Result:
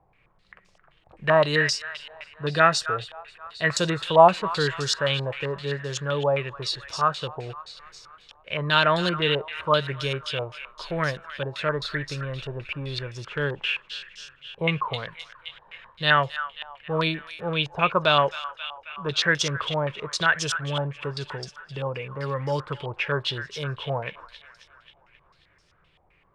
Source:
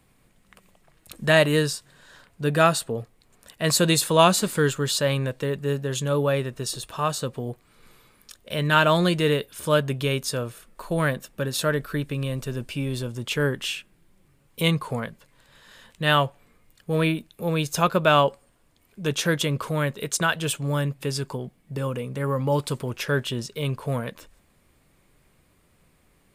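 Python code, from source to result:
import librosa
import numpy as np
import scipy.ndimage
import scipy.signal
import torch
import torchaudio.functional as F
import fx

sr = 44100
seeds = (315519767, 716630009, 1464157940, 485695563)

y = fx.peak_eq(x, sr, hz=240.0, db=-14.5, octaves=0.4)
y = fx.echo_wet_highpass(y, sr, ms=268, feedback_pct=61, hz=1500.0, wet_db=-9.5)
y = fx.filter_held_lowpass(y, sr, hz=7.7, low_hz=830.0, high_hz=5500.0)
y = y * 10.0 ** (-3.0 / 20.0)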